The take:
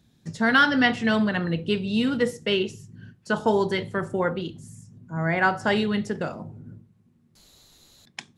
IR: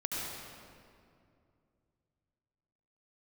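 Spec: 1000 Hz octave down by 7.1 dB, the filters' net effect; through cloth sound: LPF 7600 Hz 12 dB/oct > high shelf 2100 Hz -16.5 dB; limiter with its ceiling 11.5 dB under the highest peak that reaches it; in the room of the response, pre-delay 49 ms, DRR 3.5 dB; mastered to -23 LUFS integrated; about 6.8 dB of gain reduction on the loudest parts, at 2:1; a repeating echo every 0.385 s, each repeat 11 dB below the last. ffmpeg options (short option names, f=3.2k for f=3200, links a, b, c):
-filter_complex "[0:a]equalizer=f=1k:t=o:g=-5.5,acompressor=threshold=-29dB:ratio=2,alimiter=level_in=3.5dB:limit=-24dB:level=0:latency=1,volume=-3.5dB,aecho=1:1:385|770|1155:0.282|0.0789|0.0221,asplit=2[a][b];[1:a]atrim=start_sample=2205,adelay=49[c];[b][c]afir=irnorm=-1:irlink=0,volume=-8dB[d];[a][d]amix=inputs=2:normalize=0,lowpass=7.6k,highshelf=f=2.1k:g=-16.5,volume=12.5dB"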